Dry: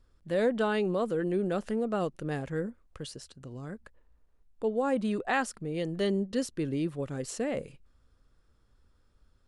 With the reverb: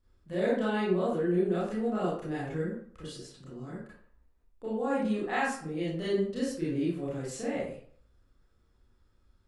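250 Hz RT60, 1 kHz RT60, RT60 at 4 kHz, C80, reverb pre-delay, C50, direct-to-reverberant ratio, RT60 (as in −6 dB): 0.55 s, 0.55 s, 0.40 s, 5.0 dB, 27 ms, 0.0 dB, −9.5 dB, 0.55 s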